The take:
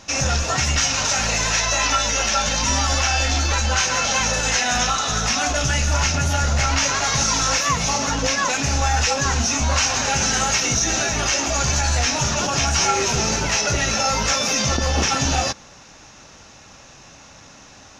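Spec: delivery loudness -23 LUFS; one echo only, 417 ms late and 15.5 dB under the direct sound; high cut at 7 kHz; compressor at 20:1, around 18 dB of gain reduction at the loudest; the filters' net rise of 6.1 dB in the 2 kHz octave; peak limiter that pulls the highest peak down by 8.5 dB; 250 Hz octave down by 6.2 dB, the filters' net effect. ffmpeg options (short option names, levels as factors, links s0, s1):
-af "lowpass=7000,equalizer=f=250:t=o:g=-8.5,equalizer=f=2000:t=o:g=8,acompressor=threshold=0.0282:ratio=20,alimiter=level_in=1.58:limit=0.0631:level=0:latency=1,volume=0.631,aecho=1:1:417:0.168,volume=4.47"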